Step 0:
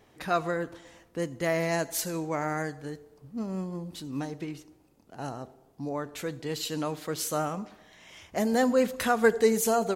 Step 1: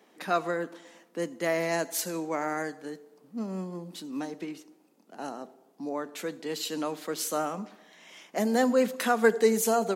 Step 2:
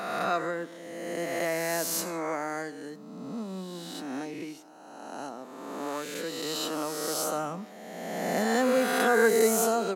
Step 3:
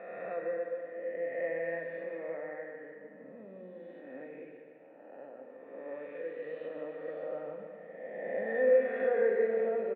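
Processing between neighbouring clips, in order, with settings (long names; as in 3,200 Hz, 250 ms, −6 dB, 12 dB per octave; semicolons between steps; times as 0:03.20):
Butterworth high-pass 180 Hz 48 dB per octave
peak hold with a rise ahead of every peak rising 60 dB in 1.83 s; level −3.5 dB
formant resonators in series e; repeating echo 145 ms, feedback 52%, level −9 dB; on a send at −4 dB: convolution reverb RT60 2.4 s, pre-delay 8 ms; on the sum: level +1 dB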